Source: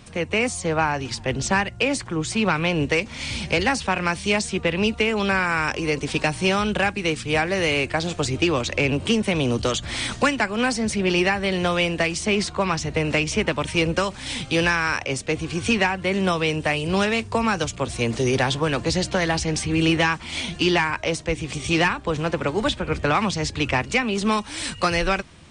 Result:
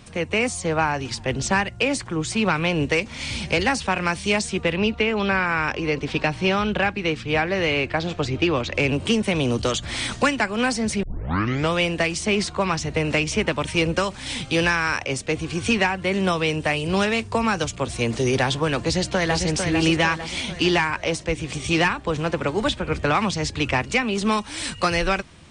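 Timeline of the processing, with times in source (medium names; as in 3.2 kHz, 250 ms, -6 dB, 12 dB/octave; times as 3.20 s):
4.76–8.75 s: low-pass 4.1 kHz
11.03 s: tape start 0.70 s
18.79–19.44 s: echo throw 450 ms, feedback 50%, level -5.5 dB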